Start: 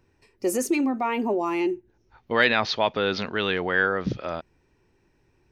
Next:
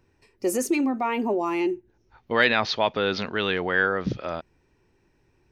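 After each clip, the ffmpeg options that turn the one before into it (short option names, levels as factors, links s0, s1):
-af anull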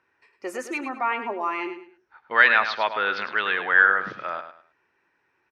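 -filter_complex "[0:a]bandpass=f=1500:t=q:w=1.7:csg=0,asplit=2[s0][s1];[s1]aecho=0:1:104|208|312:0.316|0.0854|0.0231[s2];[s0][s2]amix=inputs=2:normalize=0,volume=2.24"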